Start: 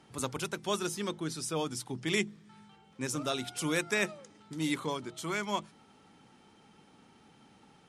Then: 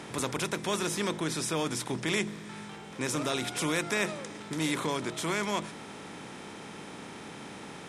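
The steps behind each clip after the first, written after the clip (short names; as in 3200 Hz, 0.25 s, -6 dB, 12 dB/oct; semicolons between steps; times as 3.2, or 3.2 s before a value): per-bin compression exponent 0.6; in parallel at +2 dB: limiter -22.5 dBFS, peak gain reduction 9.5 dB; on the sum: gain -6 dB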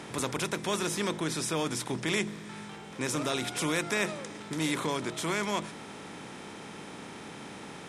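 nothing audible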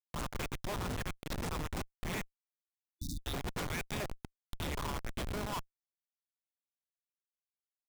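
LFO high-pass saw up 1.5 Hz 600–3900 Hz; Schmitt trigger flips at -27.5 dBFS; spectral delete 2.5–3.24, 330–3500 Hz; gain -1.5 dB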